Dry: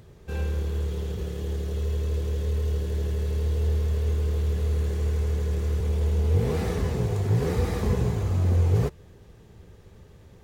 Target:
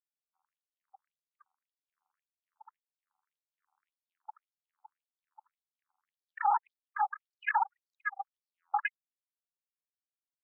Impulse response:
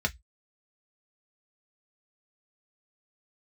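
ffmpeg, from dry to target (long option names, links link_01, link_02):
-filter_complex "[0:a]aeval=exprs='val(0)+0.5*0.0355*sgn(val(0))':channel_layout=same,equalizer=frequency=400:width_type=o:width=0.66:gain=13.5,asplit=2[link_01][link_02];[link_02]adelay=68,lowpass=frequency=1000:poles=1,volume=-10dB,asplit=2[link_03][link_04];[link_04]adelay=68,lowpass=frequency=1000:poles=1,volume=0.41,asplit=2[link_05][link_06];[link_06]adelay=68,lowpass=frequency=1000:poles=1,volume=0.41,asplit=2[link_07][link_08];[link_08]adelay=68,lowpass=frequency=1000:poles=1,volume=0.41[link_09];[link_01][link_03][link_05][link_07][link_09]amix=inputs=5:normalize=0,acontrast=29,asplit=2[link_10][link_11];[1:a]atrim=start_sample=2205,lowshelf=frequency=390:gain=-6.5[link_12];[link_11][link_12]afir=irnorm=-1:irlink=0,volume=-22.5dB[link_13];[link_10][link_13]amix=inputs=2:normalize=0,afftfilt=real='re*gte(hypot(re,im),1.58)':imag='im*gte(hypot(re,im),1.58)':win_size=1024:overlap=0.75,acrossover=split=370 5100:gain=0.141 1 0.112[link_14][link_15][link_16];[link_14][link_15][link_16]amix=inputs=3:normalize=0,aeval=exprs='0.422*(cos(1*acos(clip(val(0)/0.422,-1,1)))-cos(1*PI/2))+0.0075*(cos(5*acos(clip(val(0)/0.422,-1,1)))-cos(5*PI/2))+0.106*(cos(6*acos(clip(val(0)/0.422,-1,1)))-cos(6*PI/2))+0.0335*(cos(7*acos(clip(val(0)/0.422,-1,1)))-cos(7*PI/2))':channel_layout=same,acrossover=split=3400[link_17][link_18];[link_18]acompressor=threshold=-54dB:ratio=4:attack=1:release=60[link_19];[link_17][link_19]amix=inputs=2:normalize=0,afftfilt=real='re*between(b*sr/1024,990*pow(6000/990,0.5+0.5*sin(2*PI*1.8*pts/sr))/1.41,990*pow(6000/990,0.5+0.5*sin(2*PI*1.8*pts/sr))*1.41)':imag='im*between(b*sr/1024,990*pow(6000/990,0.5+0.5*sin(2*PI*1.8*pts/sr))/1.41,990*pow(6000/990,0.5+0.5*sin(2*PI*1.8*pts/sr))*1.41)':win_size=1024:overlap=0.75"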